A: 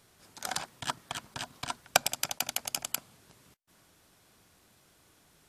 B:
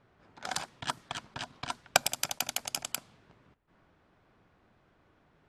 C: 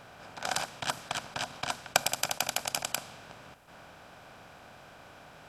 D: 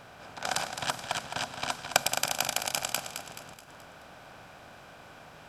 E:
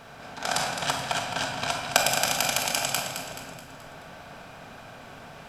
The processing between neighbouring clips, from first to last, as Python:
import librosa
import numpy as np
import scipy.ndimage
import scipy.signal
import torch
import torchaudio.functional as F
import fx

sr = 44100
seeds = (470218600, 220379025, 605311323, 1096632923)

y1 = fx.dmg_noise_colour(x, sr, seeds[0], colour='pink', level_db=-76.0)
y1 = fx.env_lowpass(y1, sr, base_hz=1700.0, full_db=-30.0)
y2 = fx.bin_compress(y1, sr, power=0.6)
y2 = F.gain(torch.from_numpy(y2), -2.0).numpy()
y3 = fx.echo_feedback(y2, sr, ms=214, feedback_pct=47, wet_db=-8.5)
y3 = F.gain(torch.from_numpy(y3), 1.0).numpy()
y4 = fx.room_shoebox(y3, sr, seeds[1], volume_m3=800.0, walls='mixed', distance_m=1.6)
y4 = F.gain(torch.from_numpy(y4), 2.0).numpy()